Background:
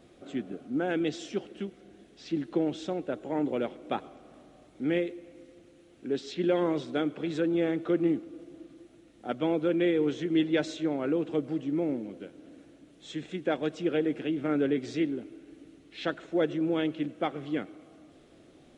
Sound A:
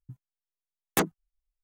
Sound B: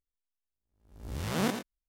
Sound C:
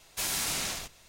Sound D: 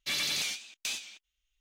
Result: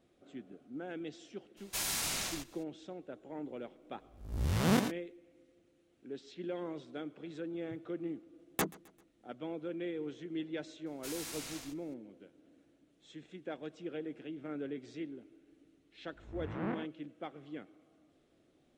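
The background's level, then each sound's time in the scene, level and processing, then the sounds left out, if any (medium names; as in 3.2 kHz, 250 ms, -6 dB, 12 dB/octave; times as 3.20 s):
background -13.5 dB
1.56 s: add C -4 dB, fades 0.02 s
3.29 s: add B -0.5 dB + bass shelf 170 Hz +7 dB
7.62 s: add A -8 dB + feedback delay 131 ms, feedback 46%, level -23 dB
10.86 s: add C -13 dB
15.24 s: add B -8 dB + low-pass 2.1 kHz 24 dB/octave
not used: D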